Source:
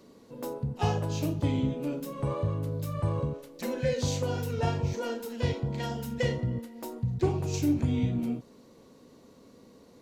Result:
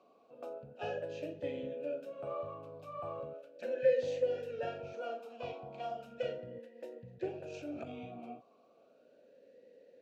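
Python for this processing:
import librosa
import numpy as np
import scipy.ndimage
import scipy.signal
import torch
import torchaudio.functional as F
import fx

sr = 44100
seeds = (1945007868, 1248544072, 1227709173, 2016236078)

y = fx.transient(x, sr, attack_db=-6, sustain_db=6, at=(7.48, 7.94))
y = fx.vowel_sweep(y, sr, vowels='a-e', hz=0.36)
y = y * librosa.db_to_amplitude(4.5)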